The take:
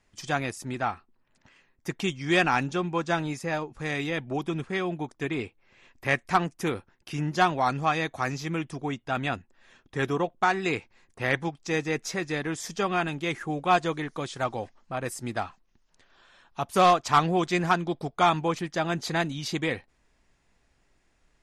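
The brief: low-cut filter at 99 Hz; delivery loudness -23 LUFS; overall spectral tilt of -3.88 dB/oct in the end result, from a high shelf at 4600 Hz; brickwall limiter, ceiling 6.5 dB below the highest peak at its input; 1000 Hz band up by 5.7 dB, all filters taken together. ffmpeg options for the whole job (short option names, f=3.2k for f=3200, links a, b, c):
-af "highpass=99,equalizer=f=1k:t=o:g=8,highshelf=f=4.6k:g=-3.5,volume=3dB,alimiter=limit=-6.5dB:level=0:latency=1"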